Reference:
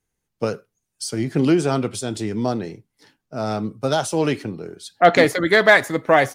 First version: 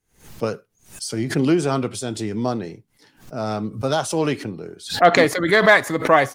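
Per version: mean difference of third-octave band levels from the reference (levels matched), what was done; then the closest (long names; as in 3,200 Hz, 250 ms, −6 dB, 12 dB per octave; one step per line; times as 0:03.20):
2.0 dB: dynamic equaliser 1,100 Hz, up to +7 dB, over −39 dBFS, Q 6.4
background raised ahead of every attack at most 140 dB per second
level −1 dB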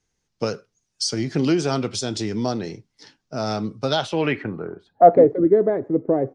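5.5 dB: in parallel at +2.5 dB: downward compressor, threshold −28 dBFS, peak gain reduction 18.5 dB
on the sum: low-pass filter sweep 5,600 Hz → 390 Hz, 0:03.77–0:05.35
level −5 dB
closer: first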